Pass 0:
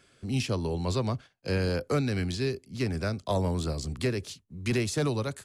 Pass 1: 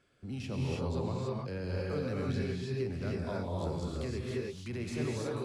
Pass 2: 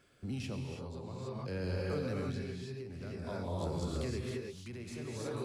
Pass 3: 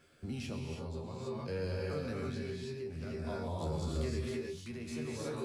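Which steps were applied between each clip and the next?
high shelf 3200 Hz -10 dB; limiter -24 dBFS, peak gain reduction 6 dB; non-linear reverb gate 0.35 s rising, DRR -4 dB; gain -7.5 dB
high shelf 7000 Hz +6 dB; compressor, threshold -35 dBFS, peak gain reduction 7 dB; tremolo 0.52 Hz, depth 64%; gain +3.5 dB
in parallel at +2.5 dB: limiter -33 dBFS, peak gain reduction 8.5 dB; on the sum: resonator 78 Hz, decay 0.18 s, harmonics all, mix 90%

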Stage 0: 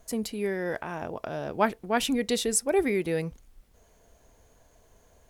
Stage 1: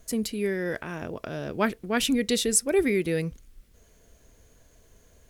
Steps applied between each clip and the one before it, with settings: bell 820 Hz -10.5 dB 0.93 oct; gain +3.5 dB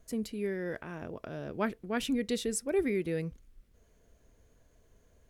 high shelf 2500 Hz -7.5 dB; gain -6 dB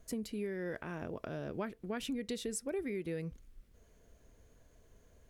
compressor 6:1, threshold -36 dBFS, peak gain reduction 11.5 dB; gain +1 dB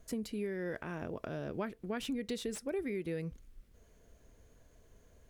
slew limiter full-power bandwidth 52 Hz; gain +1 dB

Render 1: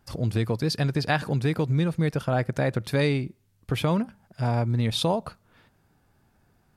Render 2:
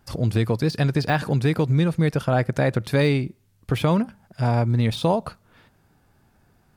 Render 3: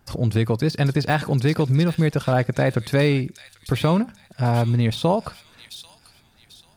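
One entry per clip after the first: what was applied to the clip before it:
de-esser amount 80%; gain +4 dB
thin delay 0.791 s, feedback 34%, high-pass 4200 Hz, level -3 dB; gain +1 dB

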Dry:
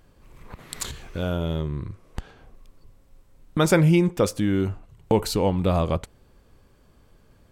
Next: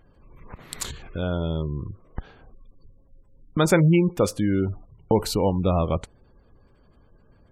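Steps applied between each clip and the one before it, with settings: spectral gate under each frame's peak -30 dB strong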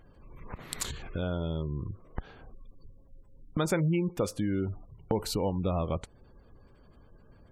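compressor 2:1, threshold -32 dBFS, peak gain reduction 10.5 dB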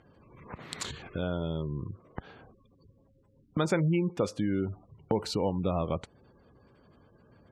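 BPF 100–6100 Hz; gain +1 dB

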